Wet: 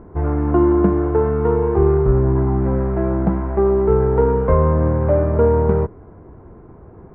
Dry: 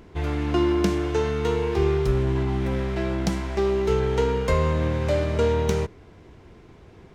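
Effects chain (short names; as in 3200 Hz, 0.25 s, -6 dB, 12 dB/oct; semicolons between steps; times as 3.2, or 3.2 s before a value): LPF 1300 Hz 24 dB/oct; gain +7 dB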